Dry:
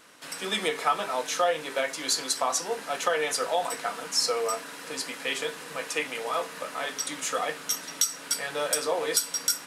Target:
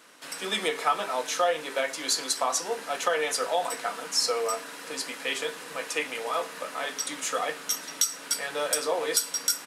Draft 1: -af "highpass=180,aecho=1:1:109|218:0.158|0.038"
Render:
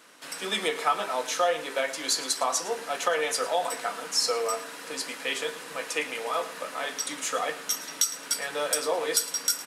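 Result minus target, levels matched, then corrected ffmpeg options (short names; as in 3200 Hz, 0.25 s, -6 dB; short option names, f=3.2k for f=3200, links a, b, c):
echo-to-direct +10 dB
-af "highpass=180,aecho=1:1:109|218:0.0501|0.012"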